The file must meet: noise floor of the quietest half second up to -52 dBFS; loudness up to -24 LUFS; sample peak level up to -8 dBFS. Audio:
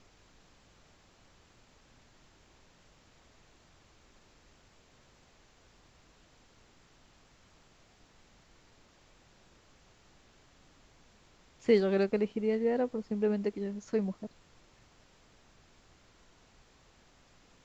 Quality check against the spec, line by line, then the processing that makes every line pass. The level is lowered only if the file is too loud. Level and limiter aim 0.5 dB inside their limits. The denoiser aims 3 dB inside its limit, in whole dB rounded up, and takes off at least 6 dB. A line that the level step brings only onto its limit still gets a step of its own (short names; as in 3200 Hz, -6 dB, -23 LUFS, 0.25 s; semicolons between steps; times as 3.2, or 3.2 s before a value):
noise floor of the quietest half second -63 dBFS: OK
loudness -31.0 LUFS: OK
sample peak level -13.0 dBFS: OK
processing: none